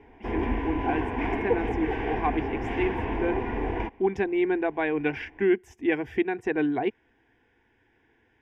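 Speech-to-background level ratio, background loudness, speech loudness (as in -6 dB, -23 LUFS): 1.0 dB, -30.0 LUFS, -29.0 LUFS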